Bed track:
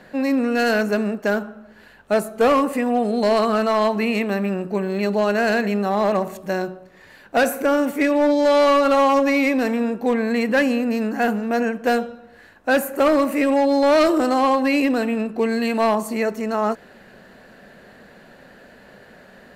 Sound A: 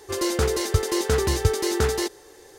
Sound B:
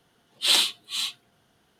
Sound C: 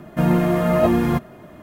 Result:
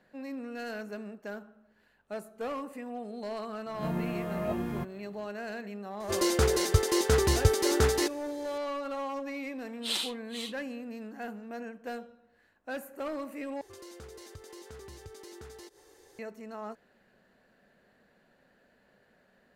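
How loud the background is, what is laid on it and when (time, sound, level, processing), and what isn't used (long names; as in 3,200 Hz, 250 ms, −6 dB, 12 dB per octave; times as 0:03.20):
bed track −19.5 dB
0:03.66: mix in C −16.5 dB + peak hold with a rise ahead of every peak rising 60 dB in 0.37 s
0:06.00: mix in A −2.5 dB
0:09.41: mix in B −12 dB
0:13.61: overwrite with A −10 dB + downward compressor 2.5 to 1, threshold −42 dBFS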